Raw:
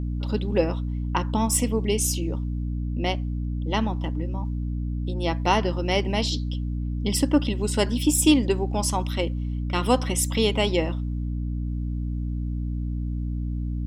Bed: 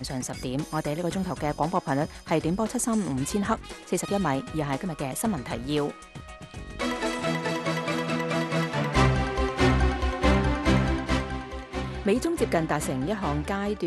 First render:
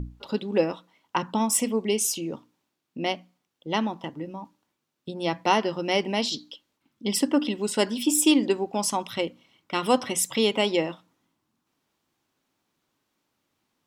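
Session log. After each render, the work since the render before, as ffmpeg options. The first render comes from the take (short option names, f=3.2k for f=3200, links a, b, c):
-af "bandreject=f=60:t=h:w=6,bandreject=f=120:t=h:w=6,bandreject=f=180:t=h:w=6,bandreject=f=240:t=h:w=6,bandreject=f=300:t=h:w=6"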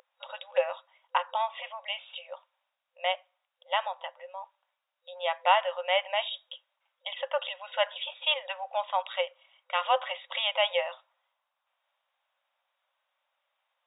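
-af "afftfilt=real='re*between(b*sr/4096,510,3800)':imag='im*between(b*sr/4096,510,3800)':win_size=4096:overlap=0.75"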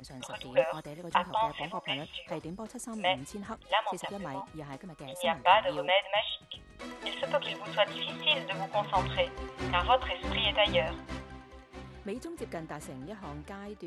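-filter_complex "[1:a]volume=-14.5dB[a];[0:a][a]amix=inputs=2:normalize=0"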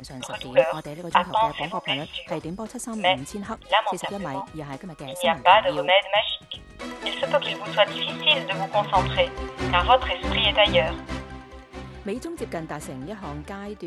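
-af "volume=8dB,alimiter=limit=-2dB:level=0:latency=1"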